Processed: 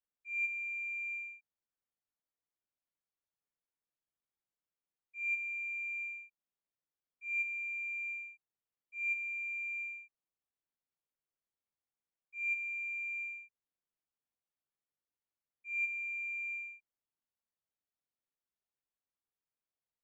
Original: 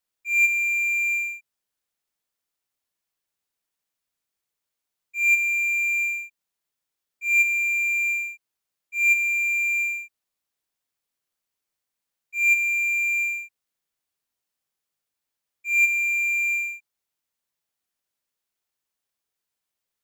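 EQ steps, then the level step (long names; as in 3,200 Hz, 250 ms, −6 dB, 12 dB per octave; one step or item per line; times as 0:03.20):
head-to-tape spacing loss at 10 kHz 35 dB
−7.5 dB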